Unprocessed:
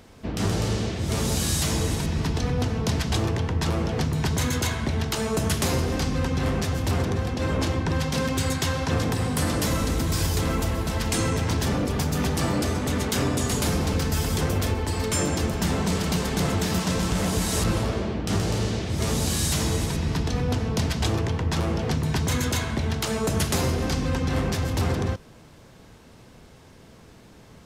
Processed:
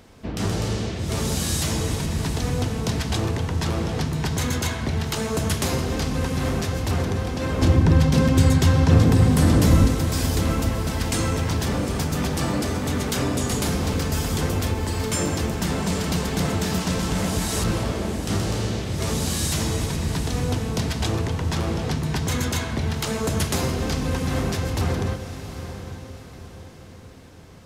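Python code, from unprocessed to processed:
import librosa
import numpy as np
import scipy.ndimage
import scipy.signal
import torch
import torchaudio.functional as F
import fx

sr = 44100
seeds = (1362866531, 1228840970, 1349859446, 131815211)

y = fx.low_shelf(x, sr, hz=400.0, db=11.0, at=(7.62, 9.88))
y = fx.echo_diffused(y, sr, ms=805, feedback_pct=43, wet_db=-10.5)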